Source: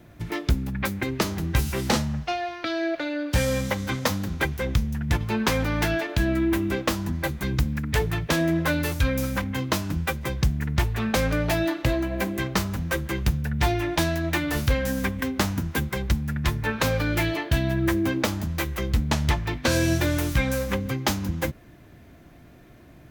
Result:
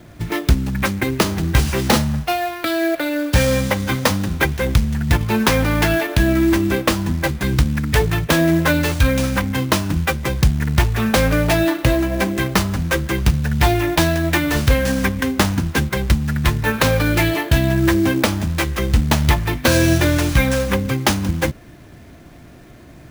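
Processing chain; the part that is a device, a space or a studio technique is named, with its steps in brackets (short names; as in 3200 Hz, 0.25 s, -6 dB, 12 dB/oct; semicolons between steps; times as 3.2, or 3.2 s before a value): early companding sampler (sample-rate reducer 16000 Hz, jitter 0%; companded quantiser 6-bit); gain +7.5 dB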